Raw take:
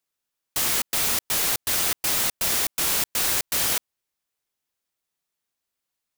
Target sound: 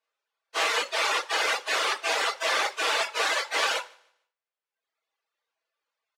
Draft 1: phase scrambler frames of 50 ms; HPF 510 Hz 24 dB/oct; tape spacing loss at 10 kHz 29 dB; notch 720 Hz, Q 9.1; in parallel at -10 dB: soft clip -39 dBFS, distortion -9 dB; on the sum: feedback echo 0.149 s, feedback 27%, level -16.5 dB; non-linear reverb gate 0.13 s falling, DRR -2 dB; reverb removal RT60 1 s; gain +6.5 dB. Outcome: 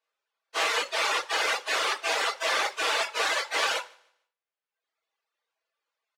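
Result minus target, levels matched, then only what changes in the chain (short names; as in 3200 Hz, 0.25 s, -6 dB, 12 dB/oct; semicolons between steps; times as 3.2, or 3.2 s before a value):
soft clip: distortion +10 dB
change: soft clip -29.5 dBFS, distortion -20 dB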